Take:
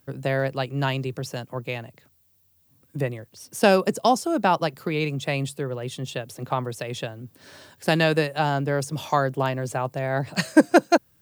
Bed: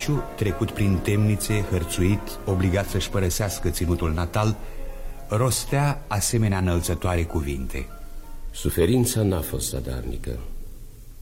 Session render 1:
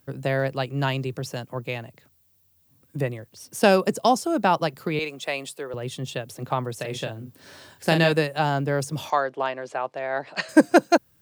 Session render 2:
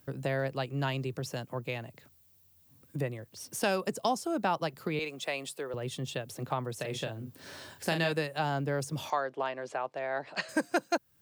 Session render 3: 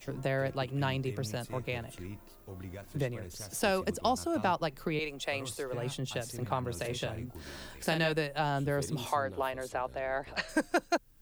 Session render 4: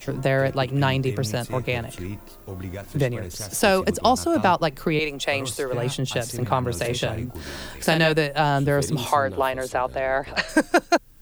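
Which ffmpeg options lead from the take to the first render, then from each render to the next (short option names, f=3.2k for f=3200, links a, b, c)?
-filter_complex "[0:a]asettb=1/sr,asplit=3[a][b][c];[a]atrim=end=4.994[d];[b]atrim=start=4.99:end=5.74,asetpts=PTS-STARTPTS,afade=t=in:d=0.004:c=qsin,afade=t=out:st=0.746:d=0.004:c=qsin,highpass=440[e];[c]atrim=start=5.736[f];[d][e]acrossfade=d=0.004:c1=hsin:c2=qsin[g];[g][f]acrossfade=d=0.004:c1=qsin:c2=hsin,asettb=1/sr,asplit=3[h][i][j];[h]atrim=end=6.764[k];[i]atrim=start=6.76:end=8.12,asetpts=PTS-STARTPTS,afade=t=in:d=0.004:c=qsin,afade=t=out:st=1.356:d=0.004:c=qsin,asplit=2[l][m];[m]adelay=36,volume=-7dB[n];[l][n]amix=inputs=2:normalize=0,atrim=end_sample=59976[o];[j]atrim=start=8.116[p];[k][o]acrossfade=d=0.004:c1=hsin:c2=qsin[q];[q][p]acrossfade=d=0.004:c1=qsin:c2=hsin,asettb=1/sr,asplit=3[r][s][t];[r]atrim=end=9.104[u];[s]atrim=start=9.1:end=10.49,asetpts=PTS-STARTPTS,afade=t=in:d=0.004:c=qsin,afade=t=out:st=1.386:d=0.004:c=qsin,highpass=440,lowpass=4k[v];[t]atrim=start=10.486[w];[u][v]acrossfade=d=0.004:c1=hsin:c2=qsin[x];[x][w]acrossfade=d=0.004:c1=qsin:c2=hsin"
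-filter_complex "[0:a]acrossover=split=820[a][b];[a]alimiter=limit=-13dB:level=0:latency=1:release=432[c];[c][b]amix=inputs=2:normalize=0,acompressor=threshold=-41dB:ratio=1.5"
-filter_complex "[1:a]volume=-22.5dB[a];[0:a][a]amix=inputs=2:normalize=0"
-af "volume=10.5dB"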